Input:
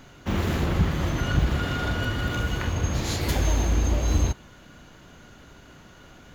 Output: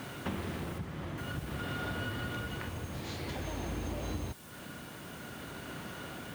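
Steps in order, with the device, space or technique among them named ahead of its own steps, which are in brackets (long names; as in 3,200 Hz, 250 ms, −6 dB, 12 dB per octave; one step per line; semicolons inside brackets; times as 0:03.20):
medium wave at night (band-pass filter 100–4,300 Hz; downward compressor 6 to 1, threshold −42 dBFS, peak gain reduction 21.5 dB; amplitude tremolo 0.51 Hz, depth 33%; steady tone 9,000 Hz −71 dBFS; white noise bed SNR 17 dB)
0:00.78–0:01.18: high-shelf EQ 6,200 Hz −11.5 dB
level +7 dB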